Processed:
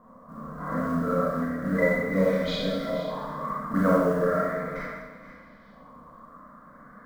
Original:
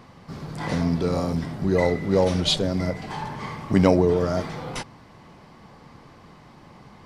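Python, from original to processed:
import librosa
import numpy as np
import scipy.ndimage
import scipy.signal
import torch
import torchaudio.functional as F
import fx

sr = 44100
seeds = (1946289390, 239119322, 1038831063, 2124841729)

p1 = fx.fixed_phaser(x, sr, hz=560.0, stages=8)
p2 = fx.filter_lfo_lowpass(p1, sr, shape='saw_up', hz=0.35, low_hz=920.0, high_hz=3200.0, q=3.2)
p3 = fx.quant_float(p2, sr, bits=4)
p4 = p3 + fx.echo_single(p3, sr, ms=478, db=-14.0, dry=0)
p5 = fx.rev_schroeder(p4, sr, rt60_s=1.1, comb_ms=28, drr_db=-5.5)
y = p5 * 10.0 ** (-7.5 / 20.0)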